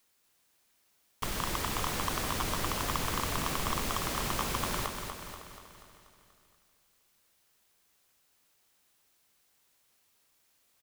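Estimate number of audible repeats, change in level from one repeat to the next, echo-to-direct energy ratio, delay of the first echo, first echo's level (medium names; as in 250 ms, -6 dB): 12, no regular repeats, -4.5 dB, 241 ms, -6.5 dB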